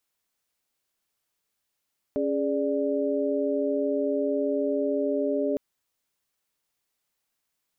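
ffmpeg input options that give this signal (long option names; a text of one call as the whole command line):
ffmpeg -f lavfi -i "aevalsrc='0.0422*(sin(2*PI*277.18*t)+sin(2*PI*415.3*t)+sin(2*PI*587.33*t))':duration=3.41:sample_rate=44100" out.wav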